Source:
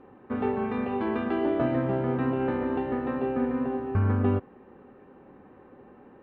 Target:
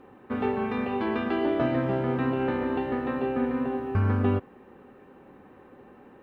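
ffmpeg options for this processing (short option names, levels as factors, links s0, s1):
-af "highshelf=f=2800:g=11"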